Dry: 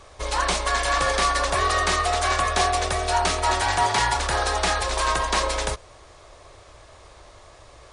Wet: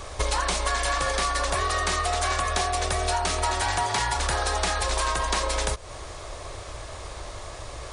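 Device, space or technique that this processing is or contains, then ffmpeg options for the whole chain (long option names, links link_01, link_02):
ASMR close-microphone chain: -af "lowshelf=frequency=130:gain=4,acompressor=threshold=-31dB:ratio=10,highshelf=frequency=8100:gain=6.5,volume=8.5dB"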